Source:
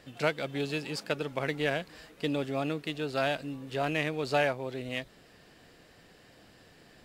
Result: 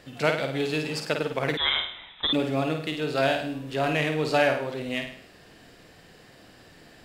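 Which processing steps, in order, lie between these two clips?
flutter between parallel walls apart 8.9 metres, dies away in 0.55 s
0:01.57–0:02.33: voice inversion scrambler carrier 3,800 Hz
level +4 dB

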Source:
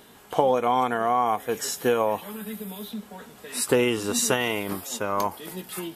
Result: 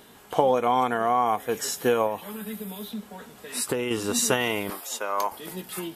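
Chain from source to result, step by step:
0:02.06–0:03.91: downward compressor 6 to 1, threshold −24 dBFS, peak gain reduction 8.5 dB
0:04.70–0:05.32: high-pass filter 510 Hz 12 dB per octave

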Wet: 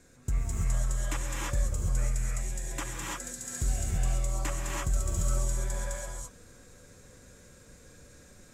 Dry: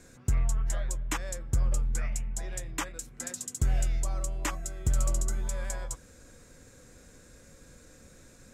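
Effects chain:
reverb whose tail is shaped and stops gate 360 ms rising, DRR −4 dB
level −5 dB

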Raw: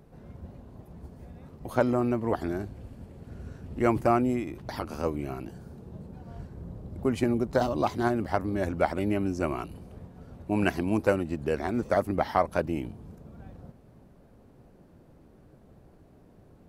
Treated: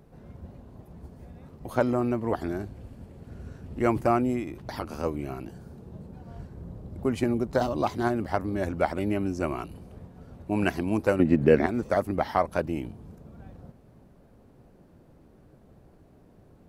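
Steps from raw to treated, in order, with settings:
0:11.19–0:11.66: graphic EQ with 10 bands 125 Hz +9 dB, 250 Hz +10 dB, 500 Hz +7 dB, 2,000 Hz +10 dB, 8,000 Hz −5 dB

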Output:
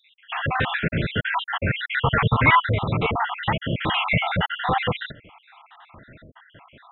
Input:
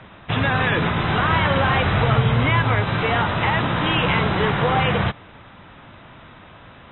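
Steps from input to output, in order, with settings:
time-frequency cells dropped at random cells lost 68%
0:01.84–0:02.69: flat-topped bell 1,500 Hz +8 dB
0:04.11–0:04.57: comb filter 1.4 ms, depth 95%

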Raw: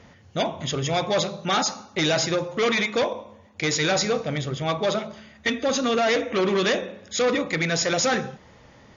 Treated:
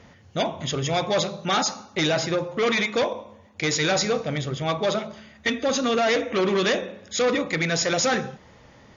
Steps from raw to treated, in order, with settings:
0:02.07–0:02.67: high-shelf EQ 4,400 Hz −8 dB

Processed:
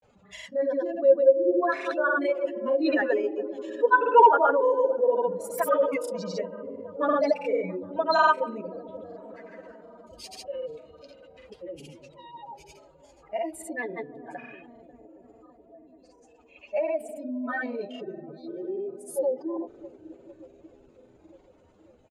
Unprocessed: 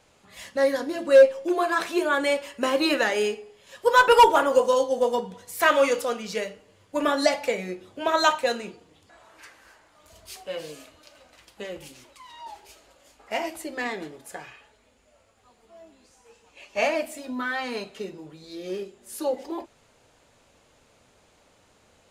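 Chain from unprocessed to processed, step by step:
expanding power law on the bin magnitudes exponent 2.1
delay with a low-pass on its return 284 ms, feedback 75%, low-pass 480 Hz, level −10 dB
granular cloud, pitch spread up and down by 0 semitones

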